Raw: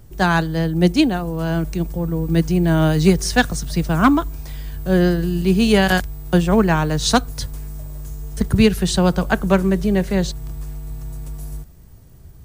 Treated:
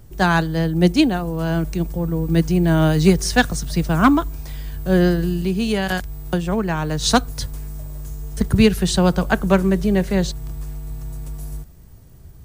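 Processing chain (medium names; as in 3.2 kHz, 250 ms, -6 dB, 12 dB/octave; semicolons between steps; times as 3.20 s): 5.32–7.04 s: compression 3:1, threshold -19 dBFS, peak gain reduction 7.5 dB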